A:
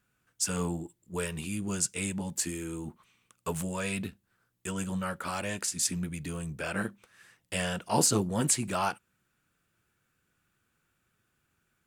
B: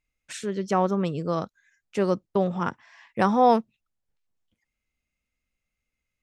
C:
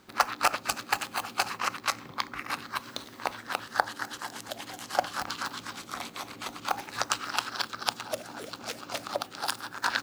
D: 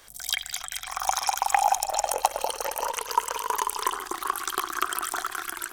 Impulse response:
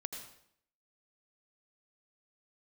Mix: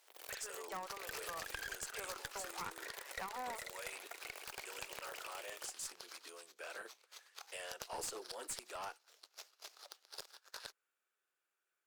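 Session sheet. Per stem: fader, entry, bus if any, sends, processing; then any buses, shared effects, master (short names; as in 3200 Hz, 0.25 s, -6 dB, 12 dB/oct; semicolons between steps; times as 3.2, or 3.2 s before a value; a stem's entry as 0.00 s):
-12.0 dB, 0.00 s, no send, dry
-1.5 dB, 0.00 s, no send, LPF 2100 Hz 12 dB/oct; compressor, threshold -29 dBFS, peak gain reduction 14.5 dB; Chebyshev high-pass 990 Hz, order 2
-9.0 dB, 0.70 s, no send, gate -39 dBFS, range -10 dB; band-pass 6300 Hz, Q 1.3; running maximum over 3 samples
-12.0 dB, 0.00 s, no send, full-wave rectifier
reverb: off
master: steep high-pass 390 Hz 36 dB/oct; one-sided clip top -39 dBFS; compressor 1.5:1, threshold -46 dBFS, peak gain reduction 4.5 dB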